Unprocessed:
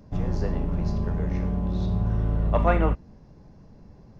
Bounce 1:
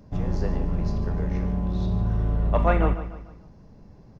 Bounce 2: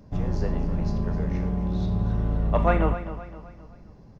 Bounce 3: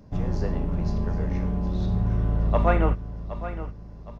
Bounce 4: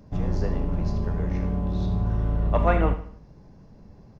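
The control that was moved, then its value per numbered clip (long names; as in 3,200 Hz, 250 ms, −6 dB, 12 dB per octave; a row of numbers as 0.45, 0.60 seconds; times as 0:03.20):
repeating echo, delay time: 148, 260, 766, 76 milliseconds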